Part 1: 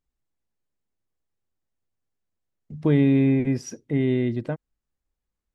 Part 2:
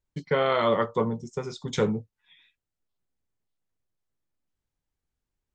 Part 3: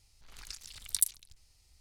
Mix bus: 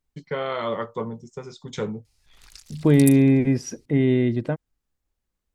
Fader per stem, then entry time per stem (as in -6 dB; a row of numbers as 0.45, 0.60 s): +3.0, -4.0, -1.5 dB; 0.00, 0.00, 2.05 s